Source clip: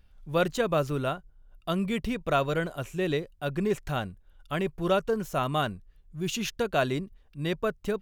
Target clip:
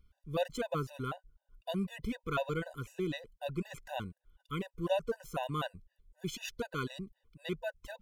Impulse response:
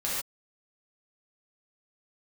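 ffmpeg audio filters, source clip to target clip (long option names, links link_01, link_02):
-af "afftfilt=real='re*gt(sin(2*PI*4*pts/sr)*(1-2*mod(floor(b*sr/1024/500),2)),0)':imag='im*gt(sin(2*PI*4*pts/sr)*(1-2*mod(floor(b*sr/1024/500),2)),0)':win_size=1024:overlap=0.75,volume=-5dB"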